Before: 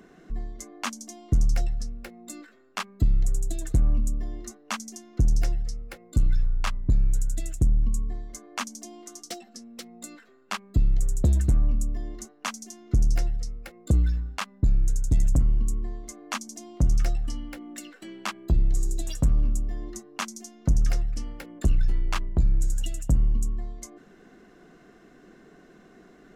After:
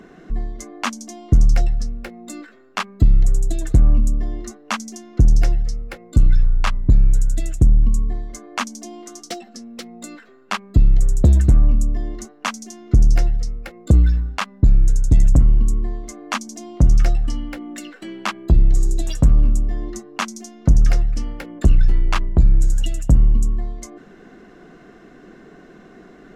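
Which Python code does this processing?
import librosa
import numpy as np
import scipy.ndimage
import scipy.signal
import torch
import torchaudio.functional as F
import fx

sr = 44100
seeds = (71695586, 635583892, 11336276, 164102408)

y = fx.high_shelf(x, sr, hz=6400.0, db=-9.5)
y = F.gain(torch.from_numpy(y), 8.5).numpy()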